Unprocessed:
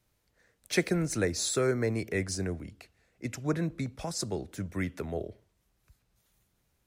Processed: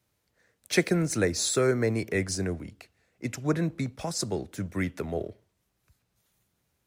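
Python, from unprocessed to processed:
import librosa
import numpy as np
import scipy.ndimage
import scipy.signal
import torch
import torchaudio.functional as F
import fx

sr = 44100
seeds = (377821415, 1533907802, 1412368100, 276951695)

p1 = scipy.signal.sosfilt(scipy.signal.butter(2, 71.0, 'highpass', fs=sr, output='sos'), x)
p2 = np.sign(p1) * np.maximum(np.abs(p1) - 10.0 ** (-51.5 / 20.0), 0.0)
y = p1 + F.gain(torch.from_numpy(p2), -6.0).numpy()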